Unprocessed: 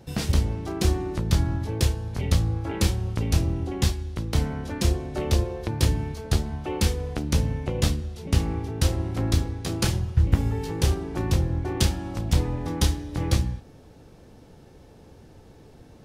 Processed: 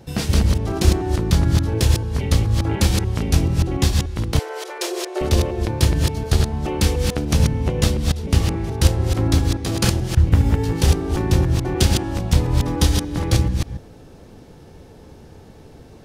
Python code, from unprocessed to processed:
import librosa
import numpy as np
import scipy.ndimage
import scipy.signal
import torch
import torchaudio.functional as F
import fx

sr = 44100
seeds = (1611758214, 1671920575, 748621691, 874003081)

y = fx.reverse_delay(x, sr, ms=145, wet_db=-3.0)
y = fx.brickwall_highpass(y, sr, low_hz=330.0, at=(4.39, 5.21))
y = y * librosa.db_to_amplitude(4.5)